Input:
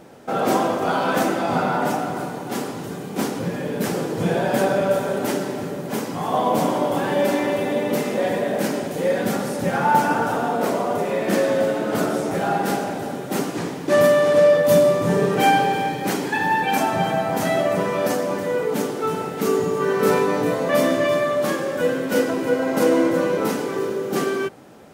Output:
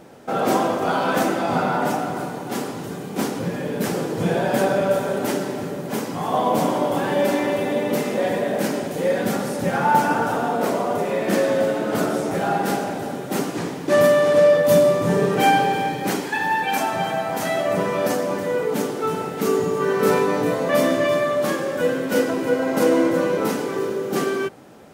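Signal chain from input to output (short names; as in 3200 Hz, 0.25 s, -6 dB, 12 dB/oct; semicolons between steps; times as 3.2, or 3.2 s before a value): 16.2–17.68 low shelf 460 Hz -6.5 dB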